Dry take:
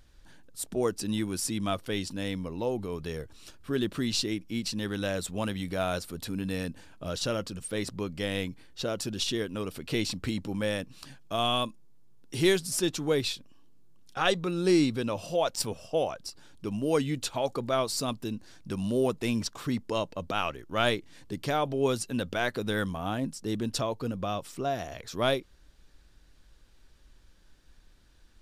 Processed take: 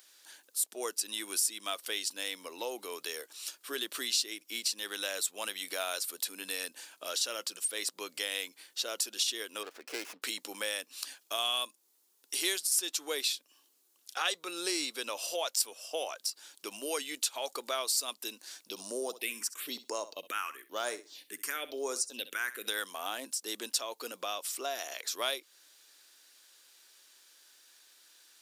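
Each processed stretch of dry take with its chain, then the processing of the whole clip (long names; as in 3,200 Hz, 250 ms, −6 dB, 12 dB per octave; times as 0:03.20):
0:09.63–0:10.22: high-pass filter 230 Hz 6 dB per octave + high-frequency loss of the air 380 metres + windowed peak hold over 9 samples
0:18.69–0:22.68: all-pass phaser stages 4, 1 Hz, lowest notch 610–3,200 Hz + flutter between parallel walls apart 11.1 metres, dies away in 0.24 s
whole clip: high-pass filter 310 Hz 24 dB per octave; spectral tilt +4.5 dB per octave; downward compressor 2 to 1, threshold −35 dBFS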